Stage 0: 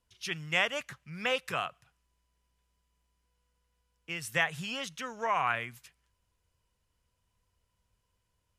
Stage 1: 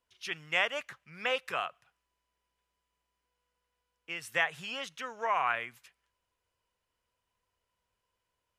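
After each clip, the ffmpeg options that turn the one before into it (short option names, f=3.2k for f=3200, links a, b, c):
-af "bass=f=250:g=-13,treble=f=4k:g=-6"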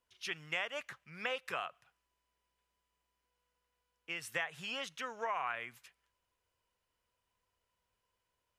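-af "acompressor=threshold=-34dB:ratio=3,volume=-1dB"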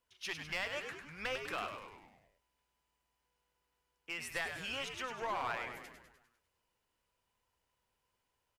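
-filter_complex "[0:a]aeval=exprs='clip(val(0),-1,0.0188)':c=same,asplit=8[a][b][c][d][e][f][g][h];[b]adelay=100,afreqshift=-100,volume=-7dB[i];[c]adelay=200,afreqshift=-200,volume=-11.9dB[j];[d]adelay=300,afreqshift=-300,volume=-16.8dB[k];[e]adelay=400,afreqshift=-400,volume=-21.6dB[l];[f]adelay=500,afreqshift=-500,volume=-26.5dB[m];[g]adelay=600,afreqshift=-600,volume=-31.4dB[n];[h]adelay=700,afreqshift=-700,volume=-36.3dB[o];[a][i][j][k][l][m][n][o]amix=inputs=8:normalize=0"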